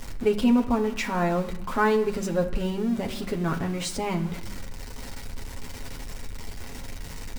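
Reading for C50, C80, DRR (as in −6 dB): 12.5 dB, 14.5 dB, 1.5 dB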